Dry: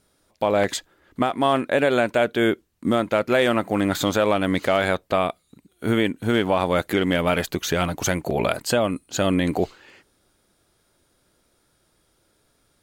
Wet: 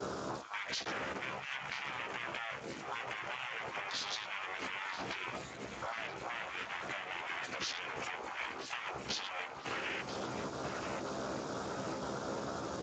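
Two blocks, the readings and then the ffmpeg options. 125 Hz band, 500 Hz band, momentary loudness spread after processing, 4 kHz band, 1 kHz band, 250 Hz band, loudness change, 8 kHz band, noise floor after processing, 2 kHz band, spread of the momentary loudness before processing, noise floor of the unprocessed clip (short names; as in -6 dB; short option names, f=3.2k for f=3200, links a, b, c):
-21.0 dB, -21.5 dB, 3 LU, -10.5 dB, -14.0 dB, -22.5 dB, -17.5 dB, -14.5 dB, -47 dBFS, -11.0 dB, 5 LU, -67 dBFS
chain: -filter_complex "[0:a]aeval=exprs='val(0)+0.5*0.0841*sgn(val(0))':c=same,afftfilt=real='re*lt(hypot(re,im),0.158)':imag='im*lt(hypot(re,im),0.158)':win_size=1024:overlap=0.75,afwtdn=0.0316,agate=range=-33dB:threshold=-26dB:ratio=3:detection=peak,lowshelf=f=110:g=-6.5,alimiter=level_in=6.5dB:limit=-24dB:level=0:latency=1:release=217,volume=-6.5dB,acompressor=threshold=-45dB:ratio=10,crystalizer=i=1.5:c=0,asplit=2[a][b];[b]adelay=15,volume=-6.5dB[c];[a][c]amix=inputs=2:normalize=0,asplit=2[d][e];[e]adelay=986,lowpass=f=4.3k:p=1,volume=-8.5dB,asplit=2[f][g];[g]adelay=986,lowpass=f=4.3k:p=1,volume=0.48,asplit=2[h][i];[i]adelay=986,lowpass=f=4.3k:p=1,volume=0.48,asplit=2[j][k];[k]adelay=986,lowpass=f=4.3k:p=1,volume=0.48,asplit=2[l][m];[m]adelay=986,lowpass=f=4.3k:p=1,volume=0.48[n];[f][h][j][l][n]amix=inputs=5:normalize=0[o];[d][o]amix=inputs=2:normalize=0,volume=7dB" -ar 16000 -c:a libspeex -b:a 34k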